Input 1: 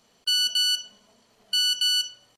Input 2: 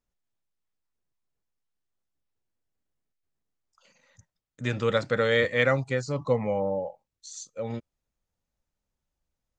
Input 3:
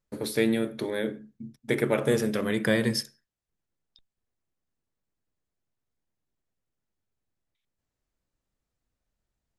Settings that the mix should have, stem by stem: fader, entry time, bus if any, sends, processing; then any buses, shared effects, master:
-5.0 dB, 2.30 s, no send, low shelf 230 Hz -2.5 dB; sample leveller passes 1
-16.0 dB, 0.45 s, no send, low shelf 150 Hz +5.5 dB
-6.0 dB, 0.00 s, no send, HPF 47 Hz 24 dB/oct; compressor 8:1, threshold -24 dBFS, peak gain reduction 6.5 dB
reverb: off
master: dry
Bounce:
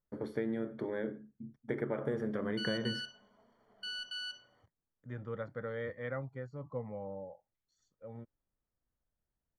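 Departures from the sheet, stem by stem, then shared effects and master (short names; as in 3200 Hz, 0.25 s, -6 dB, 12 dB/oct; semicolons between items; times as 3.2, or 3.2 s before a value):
stem 1: missing sample leveller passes 1; stem 3: missing HPF 47 Hz 24 dB/oct; master: extra polynomial smoothing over 41 samples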